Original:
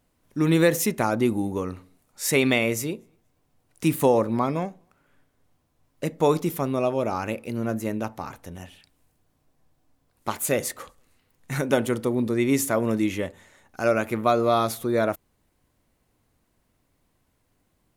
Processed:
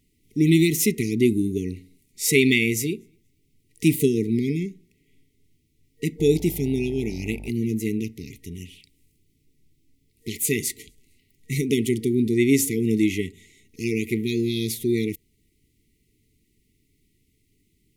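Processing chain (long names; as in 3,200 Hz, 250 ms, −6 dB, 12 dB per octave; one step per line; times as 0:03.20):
brick-wall band-stop 460–1,900 Hz
0:06.18–0:07.49: hum with harmonics 50 Hz, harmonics 18, −41 dBFS −7 dB per octave
level +3.5 dB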